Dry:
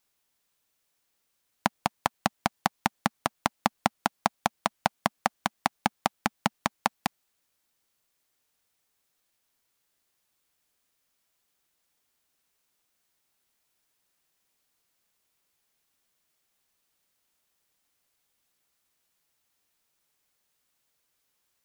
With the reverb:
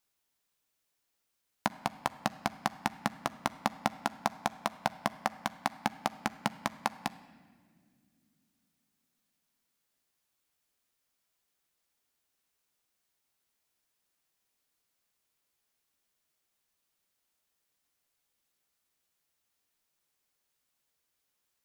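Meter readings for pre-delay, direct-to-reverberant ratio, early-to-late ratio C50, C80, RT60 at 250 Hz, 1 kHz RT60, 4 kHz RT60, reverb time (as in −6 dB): 14 ms, 11.5 dB, 16.0 dB, 17.0 dB, 3.7 s, 1.5 s, 1.3 s, 1.9 s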